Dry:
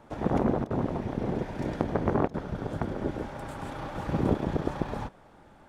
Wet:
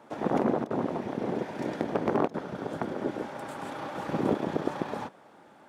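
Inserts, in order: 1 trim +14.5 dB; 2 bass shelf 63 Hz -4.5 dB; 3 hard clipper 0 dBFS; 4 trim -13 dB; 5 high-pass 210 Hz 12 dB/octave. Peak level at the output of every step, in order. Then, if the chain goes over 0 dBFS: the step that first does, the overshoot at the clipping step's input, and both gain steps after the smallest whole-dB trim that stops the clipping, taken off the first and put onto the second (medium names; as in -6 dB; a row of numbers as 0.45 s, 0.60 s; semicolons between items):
+6.5 dBFS, +6.5 dBFS, 0.0 dBFS, -13.0 dBFS, -11.0 dBFS; step 1, 6.5 dB; step 1 +7.5 dB, step 4 -6 dB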